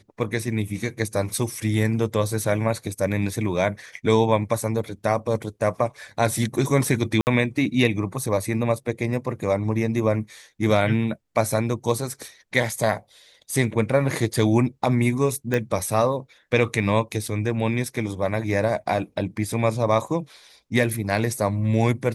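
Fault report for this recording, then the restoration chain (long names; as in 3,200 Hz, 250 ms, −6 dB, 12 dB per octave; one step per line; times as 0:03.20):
0:07.21–0:07.27: drop-out 59 ms
0:15.54: click −11 dBFS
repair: click removal
repair the gap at 0:07.21, 59 ms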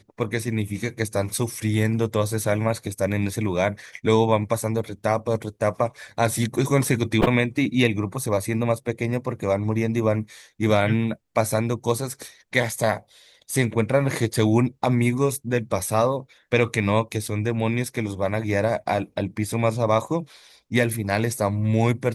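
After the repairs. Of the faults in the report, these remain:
none of them is left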